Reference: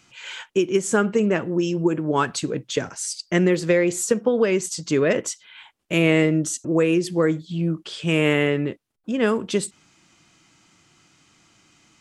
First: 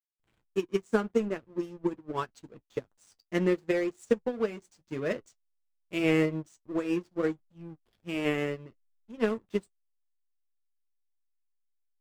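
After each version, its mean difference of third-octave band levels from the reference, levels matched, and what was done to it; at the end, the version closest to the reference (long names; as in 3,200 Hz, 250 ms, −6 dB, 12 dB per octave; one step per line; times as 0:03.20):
7.5 dB: slack as between gear wheels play −23.5 dBFS
flanger 0.79 Hz, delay 8.3 ms, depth 1.3 ms, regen −45%
expander for the loud parts 2.5 to 1, over −35 dBFS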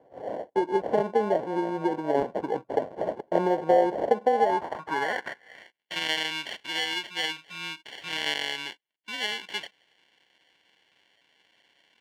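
12.0 dB: in parallel at +2 dB: downward compressor, threshold −30 dBFS, peak gain reduction 16.5 dB
on the sum: decimation without filtering 35×
band-pass filter sweep 600 Hz → 2,800 Hz, 0:04.22–0:05.87
level +1 dB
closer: first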